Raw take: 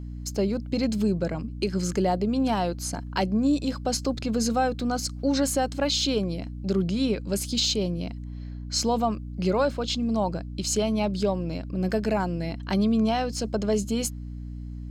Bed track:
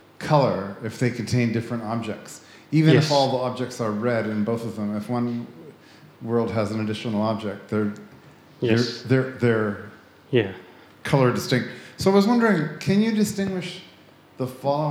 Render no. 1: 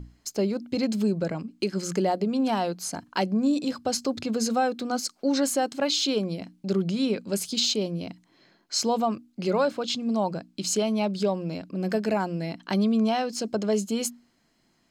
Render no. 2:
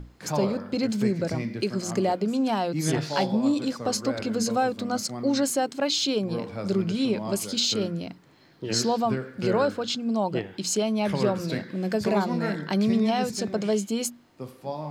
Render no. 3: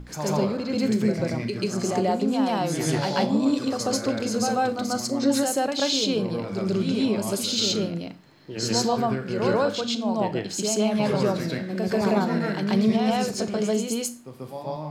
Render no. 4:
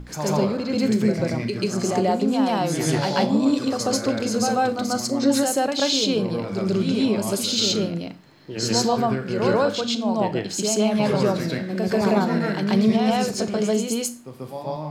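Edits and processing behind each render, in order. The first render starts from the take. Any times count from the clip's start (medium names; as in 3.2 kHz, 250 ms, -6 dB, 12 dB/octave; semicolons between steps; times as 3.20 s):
hum notches 60/120/180/240/300 Hz
add bed track -10.5 dB
reverse echo 138 ms -4 dB; Schroeder reverb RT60 0.33 s, combs from 26 ms, DRR 12.5 dB
trim +2.5 dB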